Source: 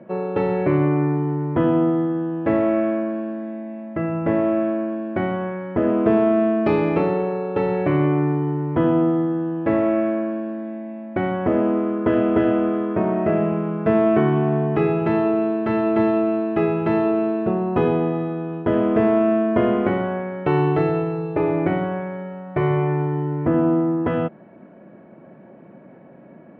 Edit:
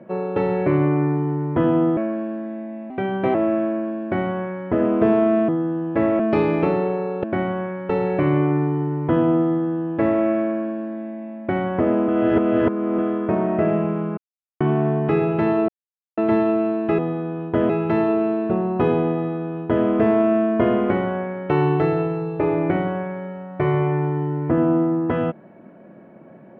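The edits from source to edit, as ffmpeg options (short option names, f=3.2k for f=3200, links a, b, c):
-filter_complex "[0:a]asplit=16[a][b][c][d][e][f][g][h][i][j][k][l][m][n][o][p];[a]atrim=end=1.972[q];[b]atrim=start=2.938:end=3.874[r];[c]atrim=start=3.87:end=4.39,asetpts=PTS-STARTPTS,asetrate=51597,aresample=44100[s];[d]atrim=start=4.386:end=6.532[t];[e]atrim=start=9.188:end=9.902[u];[f]atrim=start=6.528:end=7.572[v];[g]atrim=start=5.068:end=5.732[w];[h]atrim=start=7.568:end=11.762[x];[i]atrim=start=11.758:end=12.662,asetpts=PTS-STARTPTS,areverse[y];[j]atrim=start=12.658:end=13.85,asetpts=PTS-STARTPTS,afade=t=out:st=1.188:d=0.004:c=hsin[z];[k]atrim=start=13.85:end=14.28,asetpts=PTS-STARTPTS,volume=0[aa];[l]atrim=start=14.28:end=15.36,asetpts=PTS-STARTPTS,afade=t=in:d=0.004:c=hsin,afade=t=out:st=1.076:d=0.004:c=hsin[ab];[m]atrim=start=15.36:end=15.85,asetpts=PTS-STARTPTS,volume=0[ac];[n]atrim=start=15.85:end=16.662,asetpts=PTS-STARTPTS,afade=t=in:d=0.004:c=hsin[ad];[o]atrim=start=18.108:end=18.822[ae];[p]atrim=start=16.658[af];[q][r]acrossfade=d=0.004:c1=hsin:c2=hsin[ag];[ag][s]acrossfade=d=0.004:c1=hsin:c2=hsin[ah];[ah][t]acrossfade=d=0.004:c1=hsin:c2=hsin[ai];[ai][u]acrossfade=d=0.004:c1=hsin:c2=hsin[aj];[aj][v]acrossfade=d=0.004:c1=hsin:c2=hsin[ak];[ak][w]acrossfade=d=0.004:c1=hsin:c2=hsin[al];[al][x]acrossfade=d=0.004:c1=hsin:c2=hsin[am];[am][y]acrossfade=d=0.004:c1=hsin:c2=hsin[an];[z][aa][ab][ac][ad]concat=n=5:v=0:a=1[ao];[an][ao]acrossfade=d=0.004:c1=hsin:c2=hsin[ap];[ap][ae]acrossfade=d=0.004:c1=hsin:c2=hsin[aq];[aq][af]acrossfade=d=0.004:c1=hsin:c2=hsin"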